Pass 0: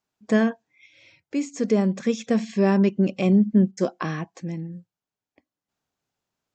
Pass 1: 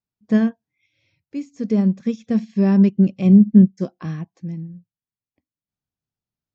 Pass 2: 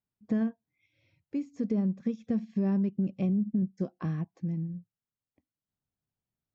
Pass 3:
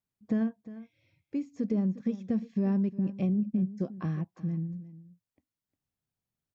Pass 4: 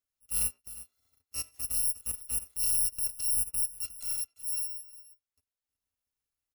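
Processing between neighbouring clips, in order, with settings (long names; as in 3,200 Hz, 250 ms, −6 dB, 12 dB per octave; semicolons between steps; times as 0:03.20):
low-pass filter 6,200 Hz 24 dB per octave; bass and treble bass +15 dB, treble +4 dB; expander for the loud parts 1.5 to 1, over −29 dBFS; level −2 dB
brickwall limiter −12 dBFS, peak gain reduction 10.5 dB; downward compressor 2.5 to 1, threshold −30 dBFS, peak gain reduction 10 dB; high-shelf EQ 2,300 Hz −10.5 dB
single-tap delay 355 ms −16 dB
samples in bit-reversed order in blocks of 256 samples; far-end echo of a speakerphone 90 ms, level −20 dB; transient designer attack −9 dB, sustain −5 dB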